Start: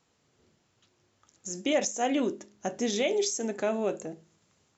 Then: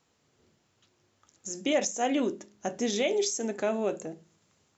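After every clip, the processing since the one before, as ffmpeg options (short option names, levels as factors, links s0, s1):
-af "bandreject=f=60:t=h:w=6,bandreject=f=120:t=h:w=6,bandreject=f=180:t=h:w=6"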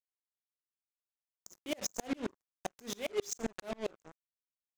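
-af "acrusher=bits=4:mix=0:aa=0.5,alimiter=limit=0.075:level=0:latency=1:release=93,aeval=exprs='val(0)*pow(10,-36*if(lt(mod(-7.5*n/s,1),2*abs(-7.5)/1000),1-mod(-7.5*n/s,1)/(2*abs(-7.5)/1000),(mod(-7.5*n/s,1)-2*abs(-7.5)/1000)/(1-2*abs(-7.5)/1000))/20)':c=same,volume=1.26"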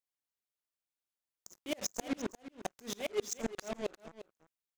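-af "aecho=1:1:351:0.2"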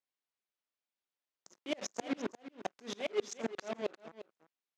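-af "highpass=200,lowpass=4600,volume=1.12"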